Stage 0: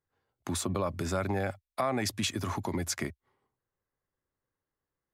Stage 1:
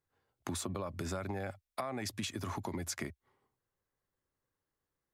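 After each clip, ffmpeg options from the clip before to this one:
ffmpeg -i in.wav -af "acompressor=threshold=-35dB:ratio=6" out.wav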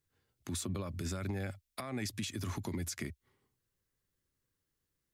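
ffmpeg -i in.wav -af "equalizer=frequency=800:width_type=o:width=1.9:gain=-12,alimiter=level_in=9.5dB:limit=-24dB:level=0:latency=1:release=103,volume=-9.5dB,volume=5.5dB" out.wav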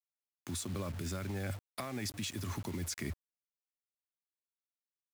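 ffmpeg -i in.wav -af "areverse,acompressor=threshold=-45dB:ratio=10,areverse,acrusher=bits=9:mix=0:aa=0.000001,volume=9.5dB" out.wav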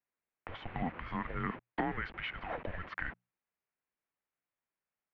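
ffmpeg -i in.wav -af "bandreject=frequency=60:width_type=h:width=6,bandreject=frequency=120:width_type=h:width=6,bandreject=frequency=180:width_type=h:width=6,bandreject=frequency=240:width_type=h:width=6,highpass=frequency=430:width_type=q:width=0.5412,highpass=frequency=430:width_type=q:width=1.307,lowpass=frequency=2800:width_type=q:width=0.5176,lowpass=frequency=2800:width_type=q:width=0.7071,lowpass=frequency=2800:width_type=q:width=1.932,afreqshift=-360,volume=9dB" out.wav

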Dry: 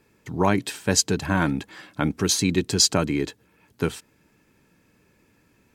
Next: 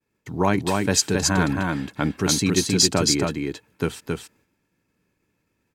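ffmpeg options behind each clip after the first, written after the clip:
ffmpeg -i in.wav -af "agate=range=-33dB:threshold=-52dB:ratio=3:detection=peak,aecho=1:1:271:0.708" out.wav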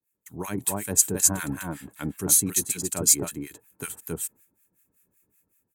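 ffmpeg -i in.wav -filter_complex "[0:a]dynaudnorm=framelen=150:gausssize=5:maxgain=9dB,aexciter=amount=15.3:drive=1.9:freq=7200,acrossover=split=1200[link_01][link_02];[link_01]aeval=exprs='val(0)*(1-1/2+1/2*cos(2*PI*5.3*n/s))':channel_layout=same[link_03];[link_02]aeval=exprs='val(0)*(1-1/2-1/2*cos(2*PI*5.3*n/s))':channel_layout=same[link_04];[link_03][link_04]amix=inputs=2:normalize=0,volume=-9.5dB" out.wav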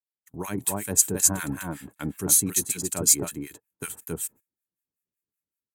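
ffmpeg -i in.wav -af "agate=range=-23dB:threshold=-45dB:ratio=16:detection=peak" out.wav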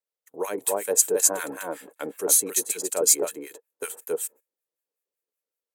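ffmpeg -i in.wav -af "highpass=frequency=490:width_type=q:width=4.9" out.wav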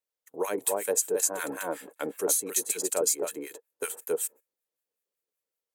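ffmpeg -i in.wav -af "acompressor=threshold=-22dB:ratio=12" out.wav

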